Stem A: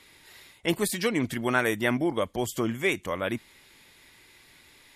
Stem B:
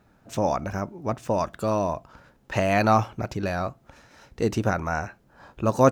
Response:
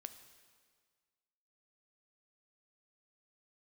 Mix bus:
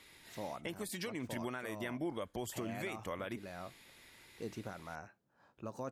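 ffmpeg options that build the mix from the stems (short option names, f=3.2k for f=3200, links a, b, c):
-filter_complex "[0:a]acompressor=threshold=-27dB:ratio=6,volume=-4.5dB[a];[1:a]alimiter=limit=-13dB:level=0:latency=1:release=74,highpass=110,volume=-18.5dB[b];[a][b]amix=inputs=2:normalize=0,alimiter=level_in=5.5dB:limit=-24dB:level=0:latency=1:release=364,volume=-5.5dB"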